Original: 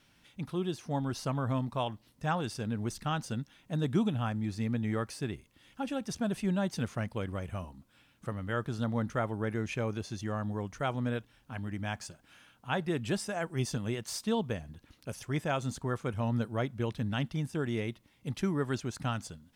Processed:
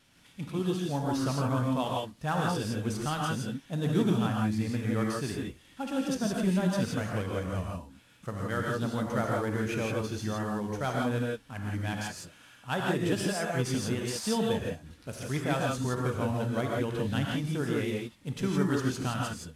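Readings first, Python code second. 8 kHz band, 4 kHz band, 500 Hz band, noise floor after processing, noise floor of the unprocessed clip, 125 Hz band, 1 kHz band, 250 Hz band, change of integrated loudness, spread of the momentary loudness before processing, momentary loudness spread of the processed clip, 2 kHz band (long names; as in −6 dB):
+4.5 dB, +4.0 dB, +4.0 dB, −58 dBFS, −66 dBFS, +2.5 dB, +3.5 dB, +4.0 dB, +3.5 dB, 9 LU, 9 LU, +4.0 dB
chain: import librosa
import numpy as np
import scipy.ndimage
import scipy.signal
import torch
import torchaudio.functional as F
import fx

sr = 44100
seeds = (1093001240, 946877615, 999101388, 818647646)

y = fx.cvsd(x, sr, bps=64000)
y = fx.rev_gated(y, sr, seeds[0], gate_ms=190, shape='rising', drr_db=-1.5)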